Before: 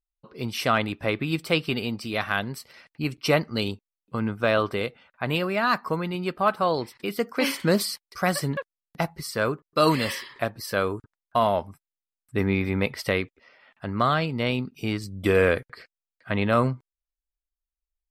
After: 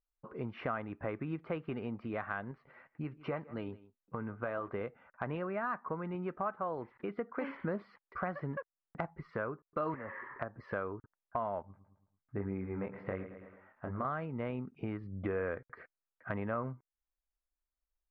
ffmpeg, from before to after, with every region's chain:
-filter_complex "[0:a]asettb=1/sr,asplit=3[a][b][c];[a]atrim=end=2.514[d];[b]atrim=start=2.51:end=4.68,asetpts=PTS-STARTPTS,afade=t=in:d=0.004:c=qsin,afade=t=out:st=2.166:d=0.004:c=qsin,flanger=delay=5.8:depth=2.5:regen=62:speed=1.9:shape=triangular,aecho=1:1:158:0.0668,atrim=end_sample=95697[e];[c]atrim=start=4.676[f];[d][e]acrossfade=d=0.004:c1=hsin:c2=qsin[g];[g][f]acrossfade=d=0.004:c1=qsin:c2=hsin,asettb=1/sr,asplit=3[h][i][j];[h]atrim=end=9.944[k];[i]atrim=start=9.94:end=10.6,asetpts=PTS-STARTPTS,afade=t=in:d=0.004:c=qsin,afade=t=out:st=0.656:d=0.004:c=qsin,highshelf=f=2.5k:t=q:w=1.5:g=-11.5,acrossover=split=450|2600[l][m][n];[l]acompressor=threshold=-35dB:ratio=4[o];[m]acompressor=threshold=-32dB:ratio=4[p];[n]acompressor=threshold=-56dB:ratio=4[q];[o][p][q]amix=inputs=3:normalize=0[r];[j]atrim=start=10.596[s];[k][r]acrossfade=d=0.004:c1=hsin:c2=qsin[t];[t][s]acrossfade=d=0.004:c1=qsin:c2=hsin,asettb=1/sr,asplit=3[u][v][w];[u]atrim=end=11.624[x];[v]atrim=start=11.62:end=14.05,asetpts=PTS-STARTPTS,afade=t=in:d=0.004:c=qsin,afade=t=out:st=2.426:d=0.004:c=qsin,lowpass=f=1.8k:p=1,flanger=delay=20:depth=4.8:speed=1.2,aecho=1:1:110|220|330|440:0.2|0.0878|0.0386|0.017,atrim=end_sample=107163[y];[w]atrim=start=14.046[z];[x][y]acrossfade=d=0.004:c1=hsin:c2=qsin[aa];[aa][z]acrossfade=d=0.004:c1=qsin:c2=hsin,lowpass=f=1.7k:w=0.5412,lowpass=f=1.7k:w=1.3066,lowshelf=f=490:g=-4,acompressor=threshold=-40dB:ratio=3,volume=2dB"

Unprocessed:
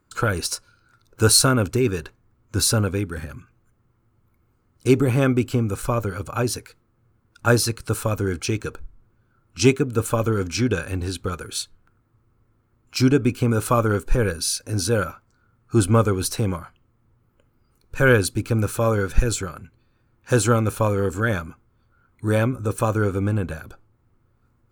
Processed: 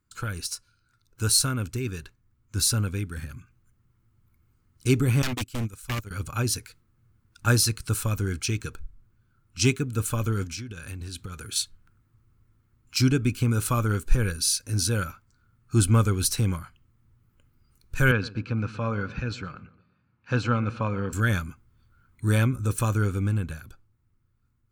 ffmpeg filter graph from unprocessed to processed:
-filter_complex "[0:a]asettb=1/sr,asplit=3[a][b][c];[a]atrim=end=5.224[d];[b]atrim=start=5.22:end=6.11,asetpts=PTS-STARTPTS,afade=t=in:d=0.004:c=qsin,afade=t=out:st=0.886:d=0.004:c=qsin,agate=range=-19dB:threshold=-22dB:ratio=16:release=100:detection=peak,highshelf=f=2.5k:g=8,aeval=exprs='0.106*(abs(mod(val(0)/0.106+3,4)-2)-1)':c=same[e];[c]atrim=start=6.106[f];[d][e]acrossfade=d=0.004:c1=hsin:c2=qsin[g];[g][f]acrossfade=d=0.004:c1=qsin:c2=hsin,asettb=1/sr,asplit=3[h][i][j];[h]atrim=end=10.444[k];[i]atrim=start=10.44:end=11.56,asetpts=PTS-STARTPTS,afade=t=in:d=0.004:c=qsin,afade=t=out:st=1.116:d=0.004:c=qsin,highpass=49,acompressor=threshold=-30dB:ratio=8:attack=3.2:release=140:knee=1:detection=peak[l];[j]atrim=start=11.556[m];[k][l]acrossfade=d=0.004:c1=hsin:c2=qsin[n];[n][m]acrossfade=d=0.004:c1=qsin:c2=hsin,asettb=1/sr,asplit=3[o][p][q];[o]atrim=end=18.114[r];[p]atrim=start=18.11:end=21.13,asetpts=PTS-STARTPTS,afade=t=in:d=0.004:c=qsin,afade=t=out:st=3.016:d=0.004:c=qsin,highpass=150,equalizer=f=360:t=q:w=4:g=-8,equalizer=f=1.9k:t=q:w=4:g=-5,equalizer=f=3.4k:t=q:w=4:g=-9,lowpass=f=3.8k:w=0.5412,lowpass=f=3.8k:w=1.3066,asplit=2[s][t];[t]adelay=119,lowpass=f=1.8k:p=1,volume=-17dB,asplit=2[u][v];[v]adelay=119,lowpass=f=1.8k:p=1,volume=0.51,asplit=2[w][x];[x]adelay=119,lowpass=f=1.8k:p=1,volume=0.51,asplit=2[y][z];[z]adelay=119,lowpass=f=1.8k:p=1,volume=0.51[aa];[s][u][w][y][aa]amix=inputs=5:normalize=0,atrim=end_sample=133182[ab];[q]atrim=start=21.126[ac];[r][ab]acrossfade=d=0.004:c1=hsin:c2=qsin[ad];[ad][ac]acrossfade=d=0.004:c1=qsin:c2=hsin,equalizer=f=590:w=0.58:g=-13,dynaudnorm=f=100:g=31:m=9dB,volume=-5.5dB"

